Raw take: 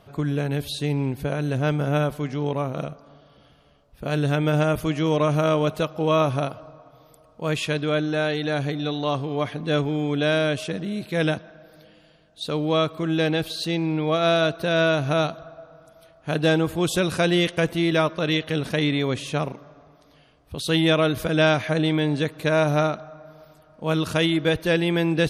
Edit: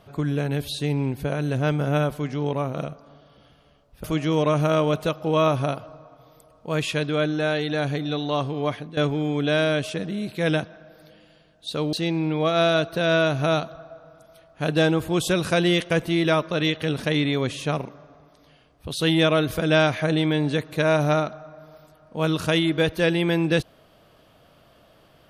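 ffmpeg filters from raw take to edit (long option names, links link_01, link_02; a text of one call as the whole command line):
ffmpeg -i in.wav -filter_complex "[0:a]asplit=4[link_01][link_02][link_03][link_04];[link_01]atrim=end=4.042[link_05];[link_02]atrim=start=4.778:end=9.71,asetpts=PTS-STARTPTS,afade=type=out:start_time=4.662:duration=0.27:silence=0.188365[link_06];[link_03]atrim=start=9.71:end=12.672,asetpts=PTS-STARTPTS,afade=type=in:duration=0.004:curve=hsin:silence=0.188365[link_07];[link_04]atrim=start=13.598[link_08];[link_06][link_07]concat=n=2:v=0:a=1[link_09];[link_05][link_09]acrossfade=duration=0.004:curve1=hsin:curve2=hsin[link_10];[link_10][link_08]acrossfade=duration=0.004:curve1=hsin:curve2=hsin" out.wav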